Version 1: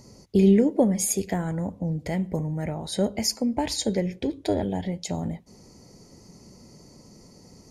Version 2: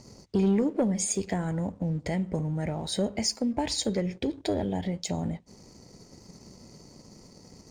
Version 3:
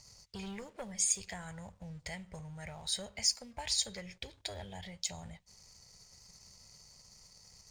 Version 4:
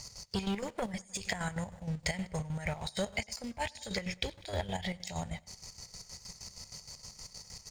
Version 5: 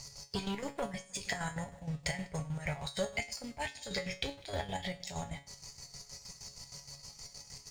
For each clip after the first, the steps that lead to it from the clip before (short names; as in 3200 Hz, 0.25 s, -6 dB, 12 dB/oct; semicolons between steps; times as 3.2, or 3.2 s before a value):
elliptic low-pass 8900 Hz; sample leveller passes 1; compressor 1.5:1, threshold -34 dBFS, peak gain reduction 7.5 dB
passive tone stack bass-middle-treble 10-0-10
negative-ratio compressor -42 dBFS, ratio -0.5; feedback echo 0.1 s, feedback 54%, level -19.5 dB; chopper 6.4 Hz, depth 65%, duty 50%; gain +8.5 dB
resonator 140 Hz, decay 0.25 s, harmonics all, mix 80%; gain +7 dB